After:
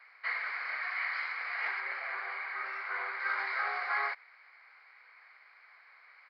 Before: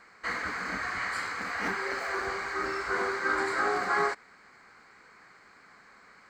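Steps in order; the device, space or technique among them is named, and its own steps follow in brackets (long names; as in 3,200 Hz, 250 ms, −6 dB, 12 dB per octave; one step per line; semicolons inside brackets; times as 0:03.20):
0:01.80–0:03.20: high-frequency loss of the air 160 metres
musical greeting card (downsampling to 11,025 Hz; high-pass filter 620 Hz 24 dB per octave; parametric band 2,200 Hz +10.5 dB 0.42 octaves)
level −6.5 dB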